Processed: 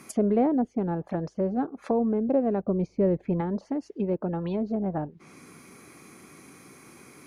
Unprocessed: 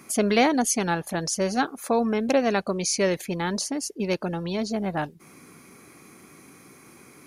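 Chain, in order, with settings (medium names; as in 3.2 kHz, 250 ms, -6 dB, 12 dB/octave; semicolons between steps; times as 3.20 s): low-pass that closes with the level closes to 550 Hz, closed at -23 dBFS; 2.63–3.41 s: bass shelf 200 Hz +7.5 dB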